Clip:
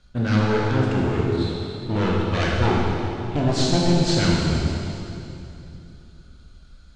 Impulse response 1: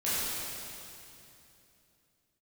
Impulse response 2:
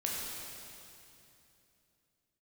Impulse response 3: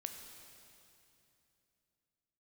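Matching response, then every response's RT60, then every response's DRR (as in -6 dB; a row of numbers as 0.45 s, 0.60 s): 2; 2.8 s, 2.9 s, 2.9 s; -12.0 dB, -4.0 dB, 4.5 dB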